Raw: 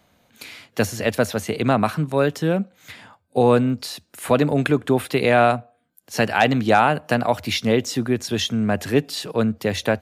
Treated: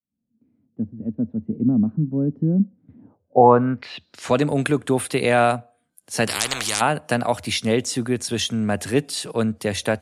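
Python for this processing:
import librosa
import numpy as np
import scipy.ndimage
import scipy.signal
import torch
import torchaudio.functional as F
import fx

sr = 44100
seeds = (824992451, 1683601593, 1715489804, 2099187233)

y = fx.fade_in_head(x, sr, length_s=2.41)
y = fx.filter_sweep_lowpass(y, sr, from_hz=240.0, to_hz=9600.0, start_s=2.95, end_s=4.45, q=3.7)
y = fx.spectral_comp(y, sr, ratio=10.0, at=(6.27, 6.8), fade=0.02)
y = y * librosa.db_to_amplitude(-1.5)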